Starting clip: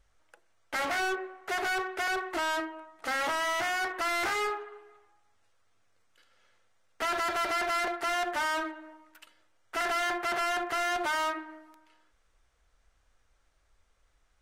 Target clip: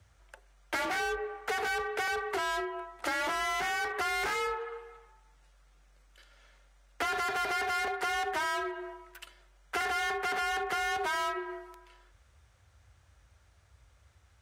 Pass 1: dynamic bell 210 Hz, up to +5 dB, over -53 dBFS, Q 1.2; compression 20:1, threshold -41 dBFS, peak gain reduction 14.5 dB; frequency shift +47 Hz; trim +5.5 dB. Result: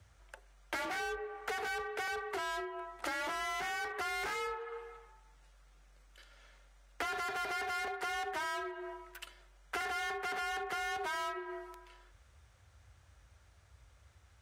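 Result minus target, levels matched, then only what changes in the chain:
compression: peak gain reduction +5.5 dB
change: compression 20:1, threshold -35 dBFS, peak gain reduction 9 dB

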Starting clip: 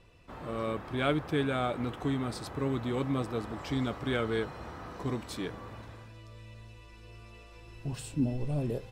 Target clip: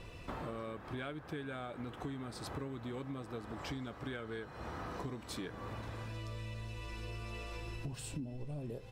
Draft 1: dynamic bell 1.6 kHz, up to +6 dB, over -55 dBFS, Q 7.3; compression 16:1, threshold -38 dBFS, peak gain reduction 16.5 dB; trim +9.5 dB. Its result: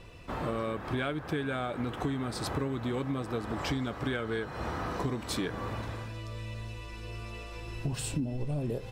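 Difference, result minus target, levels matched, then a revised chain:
compression: peak gain reduction -10 dB
dynamic bell 1.6 kHz, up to +6 dB, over -55 dBFS, Q 7.3; compression 16:1, threshold -48.5 dBFS, peak gain reduction 26.5 dB; trim +9.5 dB

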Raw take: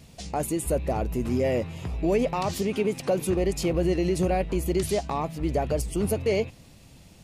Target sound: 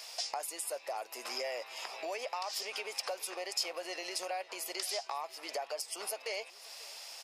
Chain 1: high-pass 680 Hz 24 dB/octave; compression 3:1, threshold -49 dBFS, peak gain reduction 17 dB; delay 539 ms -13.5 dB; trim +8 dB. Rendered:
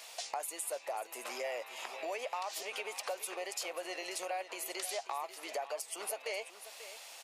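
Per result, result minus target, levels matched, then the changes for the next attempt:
echo-to-direct +9 dB; 4 kHz band -3.5 dB
change: delay 539 ms -22.5 dB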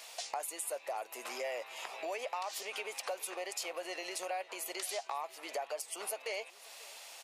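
4 kHz band -3.5 dB
add after compression: peaking EQ 5.1 kHz +12.5 dB 0.25 oct

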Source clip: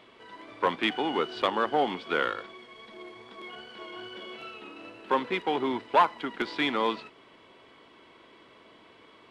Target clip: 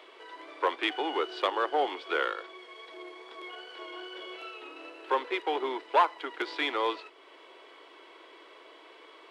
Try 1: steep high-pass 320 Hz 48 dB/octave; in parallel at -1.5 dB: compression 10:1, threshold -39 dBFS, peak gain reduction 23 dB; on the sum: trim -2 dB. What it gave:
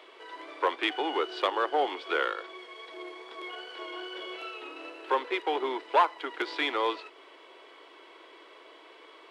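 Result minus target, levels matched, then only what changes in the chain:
compression: peak gain reduction -10.5 dB
change: compression 10:1, threshold -50.5 dBFS, peak gain reduction 33 dB

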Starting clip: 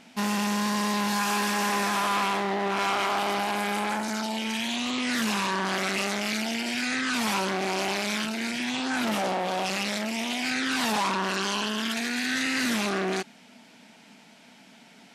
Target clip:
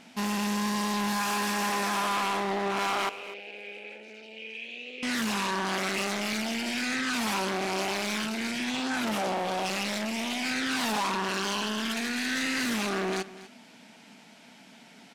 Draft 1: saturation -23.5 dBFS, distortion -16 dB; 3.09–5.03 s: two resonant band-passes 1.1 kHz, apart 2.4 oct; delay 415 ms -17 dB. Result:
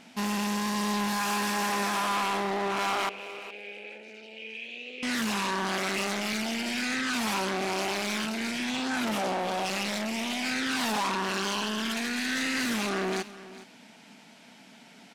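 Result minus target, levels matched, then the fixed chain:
echo 168 ms late
saturation -23.5 dBFS, distortion -16 dB; 3.09–5.03 s: two resonant band-passes 1.1 kHz, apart 2.4 oct; delay 247 ms -17 dB

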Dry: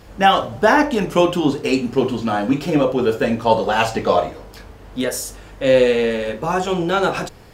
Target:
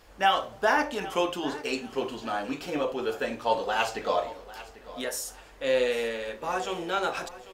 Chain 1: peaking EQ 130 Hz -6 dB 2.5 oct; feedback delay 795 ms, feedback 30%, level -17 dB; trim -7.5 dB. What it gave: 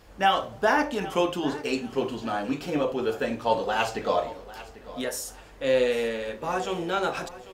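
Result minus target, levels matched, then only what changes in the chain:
125 Hz band +5.5 dB
change: peaking EQ 130 Hz -14.5 dB 2.5 oct

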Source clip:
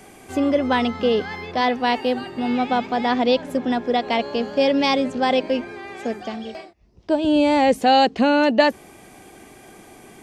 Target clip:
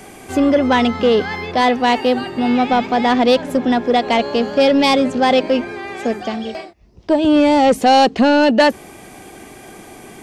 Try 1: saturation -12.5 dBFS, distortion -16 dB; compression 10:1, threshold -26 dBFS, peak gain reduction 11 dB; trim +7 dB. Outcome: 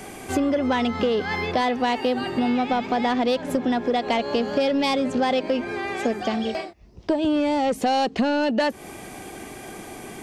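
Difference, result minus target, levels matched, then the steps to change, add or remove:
compression: peak gain reduction +11 dB
remove: compression 10:1, threshold -26 dBFS, peak gain reduction 11 dB

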